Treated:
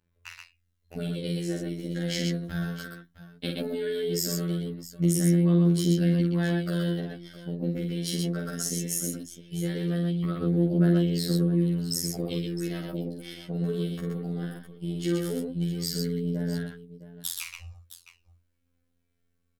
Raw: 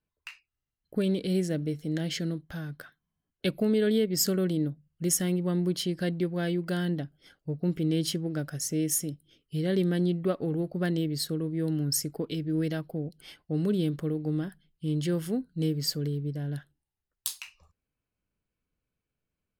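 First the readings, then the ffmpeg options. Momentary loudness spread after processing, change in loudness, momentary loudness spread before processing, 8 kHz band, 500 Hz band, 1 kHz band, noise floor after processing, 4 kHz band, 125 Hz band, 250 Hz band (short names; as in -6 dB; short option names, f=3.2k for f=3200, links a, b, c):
15 LU, +1.5 dB, 12 LU, -0.5 dB, -0.5 dB, 0.0 dB, -73 dBFS, +0.5 dB, +3.5 dB, +2.0 dB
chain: -filter_complex "[0:a]equalizer=f=78:w=4.2:g=13,asplit=2[a][b];[b]alimiter=limit=-21.5dB:level=0:latency=1:release=111,volume=-1.5dB[c];[a][c]amix=inputs=2:normalize=0,acompressor=threshold=-25dB:ratio=6,afftfilt=real='hypot(re,im)*cos(PI*b)':imag='0':win_size=2048:overlap=0.75,aphaser=in_gain=1:out_gain=1:delay=4.5:decay=0.48:speed=0.18:type=sinusoidal,aecho=1:1:47|124|662:0.631|0.668|0.2"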